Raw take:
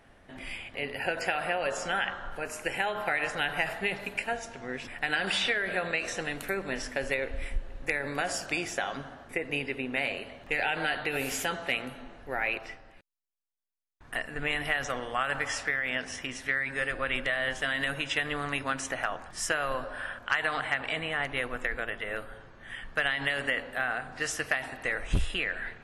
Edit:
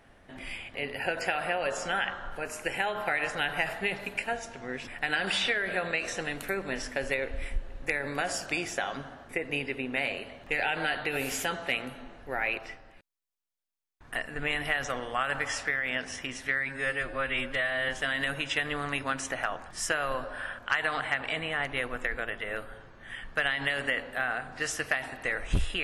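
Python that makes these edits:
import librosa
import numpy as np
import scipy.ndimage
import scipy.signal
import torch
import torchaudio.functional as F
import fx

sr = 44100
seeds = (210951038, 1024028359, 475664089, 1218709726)

y = fx.edit(x, sr, fx.stretch_span(start_s=16.69, length_s=0.8, factor=1.5), tone=tone)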